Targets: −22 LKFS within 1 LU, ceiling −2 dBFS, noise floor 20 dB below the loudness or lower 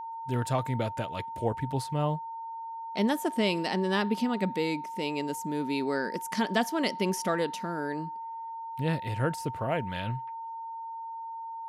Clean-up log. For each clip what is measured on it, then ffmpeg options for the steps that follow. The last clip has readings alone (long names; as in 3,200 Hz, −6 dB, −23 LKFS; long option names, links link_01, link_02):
interfering tone 910 Hz; level of the tone −36 dBFS; integrated loudness −31.0 LKFS; sample peak −14.5 dBFS; target loudness −22.0 LKFS
→ -af "bandreject=frequency=910:width=30"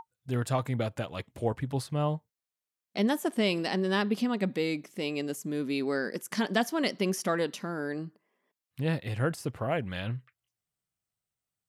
interfering tone none found; integrated loudness −31.0 LKFS; sample peak −14.5 dBFS; target loudness −22.0 LKFS
→ -af "volume=9dB"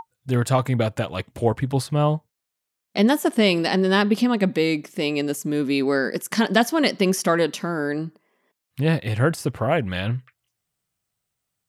integrated loudness −22.0 LKFS; sample peak −5.5 dBFS; background noise floor −82 dBFS